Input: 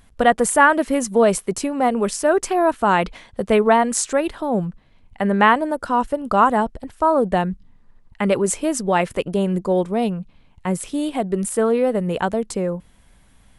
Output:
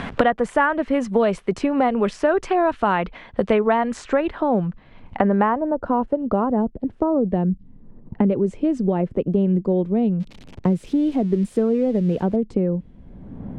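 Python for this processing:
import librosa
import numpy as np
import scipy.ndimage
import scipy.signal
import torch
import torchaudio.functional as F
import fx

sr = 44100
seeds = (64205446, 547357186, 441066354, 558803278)

y = fx.crossing_spikes(x, sr, level_db=-17.5, at=(10.2, 12.36))
y = fx.filter_sweep_lowpass(y, sr, from_hz=2900.0, to_hz=350.0, start_s=4.04, end_s=6.77, q=0.82)
y = fx.band_squash(y, sr, depth_pct=100)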